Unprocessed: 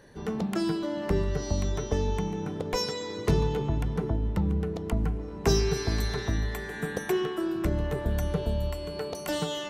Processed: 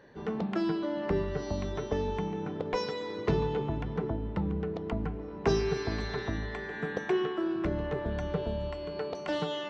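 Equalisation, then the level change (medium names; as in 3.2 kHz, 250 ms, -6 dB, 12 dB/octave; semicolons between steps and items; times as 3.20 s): Gaussian low-pass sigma 2 samples; bass shelf 120 Hz -11 dB; 0.0 dB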